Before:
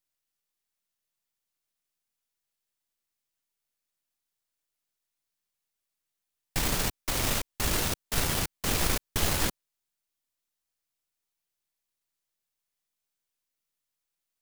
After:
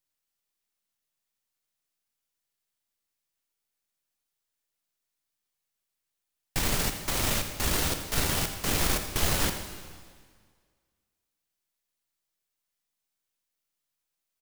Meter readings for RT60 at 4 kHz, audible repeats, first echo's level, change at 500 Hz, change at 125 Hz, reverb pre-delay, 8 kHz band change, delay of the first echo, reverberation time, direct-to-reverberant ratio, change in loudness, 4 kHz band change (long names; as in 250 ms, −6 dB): 1.7 s, 1, −14.0 dB, +1.0 dB, +1.0 dB, 6 ms, +1.0 dB, 82 ms, 1.8 s, 6.0 dB, +1.0 dB, +1.0 dB